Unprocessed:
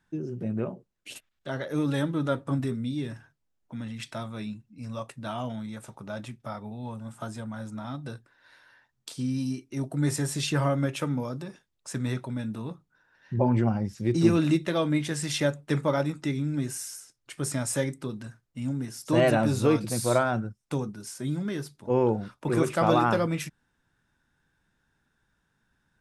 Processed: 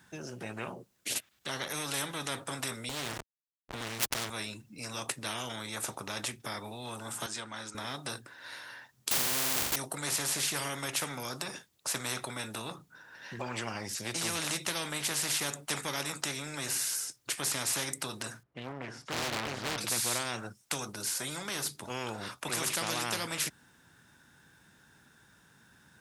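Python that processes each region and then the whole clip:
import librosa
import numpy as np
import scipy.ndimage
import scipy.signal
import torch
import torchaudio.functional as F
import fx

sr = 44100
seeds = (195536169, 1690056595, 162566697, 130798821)

y = fx.chain(x, sr, fx.lower_of_two(delay_ms=7.7),
    fx.backlash(play_db=-37.5),
    fx.env_flatten(amount_pct=70), at=(2.89, 4.3))
y = fx.chain(y, sr, fx.bandpass_edges(low_hz=400.0, high_hz=5600.0),
    fx.peak_eq(hz=620.0, db=-11.5, octaves=1.6), at=(7.26, 7.75))
y = fx.chain(y, sr, fx.schmitt(flips_db=-48.0),
    fx.room_flutter(wall_m=7.2, rt60_s=0.55), at=(9.11, 9.76))
y = fx.chain(y, sr, fx.lowpass(hz=1500.0, slope=12),
    fx.clip_hard(threshold_db=-19.0),
    fx.doppler_dist(depth_ms=0.89), at=(18.43, 19.78))
y = scipy.signal.sosfilt(scipy.signal.butter(2, 93.0, 'highpass', fs=sr, output='sos'), y)
y = fx.high_shelf(y, sr, hz=4700.0, db=7.5)
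y = fx.spectral_comp(y, sr, ratio=4.0)
y = y * 10.0 ** (-4.5 / 20.0)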